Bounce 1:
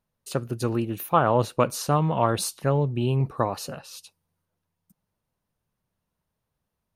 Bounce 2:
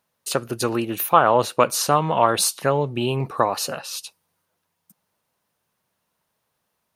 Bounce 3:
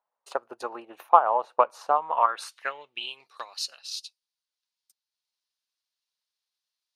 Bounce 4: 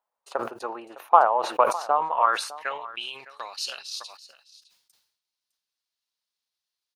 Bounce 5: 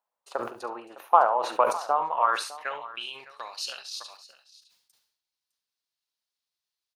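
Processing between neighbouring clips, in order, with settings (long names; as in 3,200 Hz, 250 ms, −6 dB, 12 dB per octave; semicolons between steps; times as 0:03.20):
high-pass filter 180 Hz 6 dB per octave; low-shelf EQ 400 Hz −9 dB; in parallel at −2 dB: downward compressor, threshold −32 dBFS, peak gain reduction 15.5 dB; on the sum: level +6 dB
bass and treble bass −12 dB, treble +2 dB; transient designer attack +7 dB, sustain −4 dB; band-pass filter sweep 850 Hz → 4,400 Hz, 0:01.98–0:03.28; level −3 dB
single-tap delay 608 ms −18 dB; level that may fall only so fast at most 88 dB per second
ambience of single reflections 42 ms −15 dB, 70 ms −13.5 dB; level −2.5 dB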